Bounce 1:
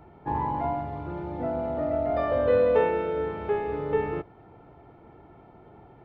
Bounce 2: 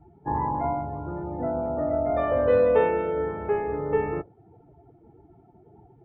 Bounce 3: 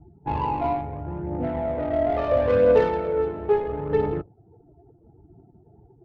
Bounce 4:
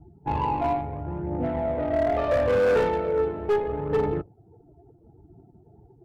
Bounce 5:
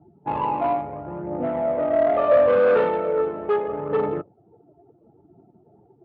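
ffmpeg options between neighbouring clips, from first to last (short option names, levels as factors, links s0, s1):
-af "afftdn=nr=20:nf=-43,volume=1.19"
-af "adynamicsmooth=sensitivity=1:basefreq=690,aphaser=in_gain=1:out_gain=1:delay=3.1:decay=0.36:speed=0.74:type=triangular,volume=1.19"
-af "asoftclip=type=hard:threshold=0.126"
-af "highpass=170,equalizer=f=210:t=q:w=4:g=3,equalizer=f=580:t=q:w=4:g=8,equalizer=f=1200:t=q:w=4:g=8,lowpass=f=3500:w=0.5412,lowpass=f=3500:w=1.3066"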